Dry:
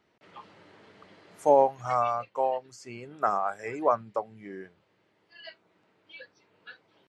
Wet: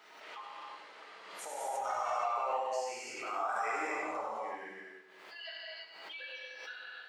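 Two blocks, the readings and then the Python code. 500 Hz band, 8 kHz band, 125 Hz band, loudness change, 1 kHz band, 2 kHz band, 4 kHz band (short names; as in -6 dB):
-12.0 dB, n/a, under -20 dB, -10.5 dB, -6.5 dB, +3.5 dB, +5.5 dB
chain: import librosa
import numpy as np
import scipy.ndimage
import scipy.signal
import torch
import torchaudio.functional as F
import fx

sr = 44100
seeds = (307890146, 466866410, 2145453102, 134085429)

y = scipy.signal.sosfilt(scipy.signal.butter(2, 710.0, 'highpass', fs=sr, output='sos'), x)
y = fx.over_compress(y, sr, threshold_db=-34.0, ratio=-1.0)
y = fx.echo_feedback(y, sr, ms=96, feedback_pct=41, wet_db=-9.5)
y = fx.rev_gated(y, sr, seeds[0], gate_ms=370, shape='flat', drr_db=-7.0)
y = fx.pre_swell(y, sr, db_per_s=41.0)
y = F.gain(torch.from_numpy(y), -8.5).numpy()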